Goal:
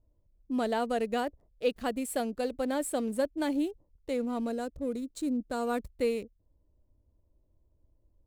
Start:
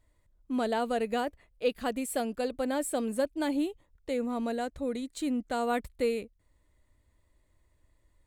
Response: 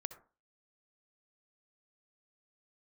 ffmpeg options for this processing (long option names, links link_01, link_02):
-filter_complex "[0:a]asettb=1/sr,asplit=3[link_01][link_02][link_03];[link_01]atrim=end=4.464[link_04];[link_02]atrim=start=4.46:end=5.86,asetpts=PTS-STARTPTS,afade=type=in:duration=0.004:curve=qsin,afade=type=out:start_time=1.396:duration=0.004:curve=qsin,equalizer=frequency=800:width_type=o:width=0.33:gain=-7,equalizer=frequency=2000:width_type=o:width=0.33:gain=-10,equalizer=frequency=3150:width_type=o:width=0.33:gain=-9[link_05];[link_03]atrim=start=5.856[link_06];[link_04][link_05]acrossfade=duration=0.004:curve1=hsin:curve2=qsin[link_07];[link_07][link_06]acrossfade=duration=0.004:curve1=qsin:curve2=hsin,acrossover=split=780[link_08][link_09];[link_09]aeval=exprs='sgn(val(0))*max(abs(val(0))-0.00211,0)':channel_layout=same[link_10];[link_08][link_10]amix=inputs=2:normalize=0"